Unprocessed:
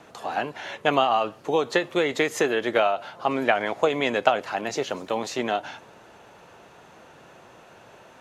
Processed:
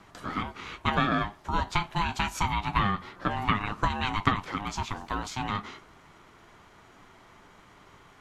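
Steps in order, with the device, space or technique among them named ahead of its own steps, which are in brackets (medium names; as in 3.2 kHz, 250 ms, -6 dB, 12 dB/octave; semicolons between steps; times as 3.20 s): alien voice (ring modulator 510 Hz; flange 0.26 Hz, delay 9.9 ms, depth 2.2 ms, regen -63%); trim +2.5 dB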